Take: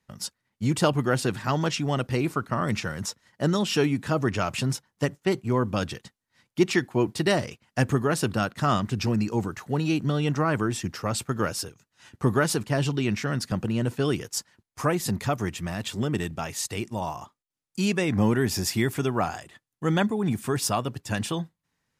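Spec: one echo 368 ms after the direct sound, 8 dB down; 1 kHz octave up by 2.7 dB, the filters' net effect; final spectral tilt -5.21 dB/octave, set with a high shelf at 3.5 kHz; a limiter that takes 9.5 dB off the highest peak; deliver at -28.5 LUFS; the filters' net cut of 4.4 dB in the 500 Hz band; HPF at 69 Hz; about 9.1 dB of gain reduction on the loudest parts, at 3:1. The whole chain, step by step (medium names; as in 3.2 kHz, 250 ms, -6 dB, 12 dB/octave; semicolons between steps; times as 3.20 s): high-pass 69 Hz; peaking EQ 500 Hz -7.5 dB; peaking EQ 1 kHz +6.5 dB; treble shelf 3.5 kHz -7.5 dB; compression 3:1, threshold -30 dBFS; peak limiter -24 dBFS; delay 368 ms -8 dB; trim +6.5 dB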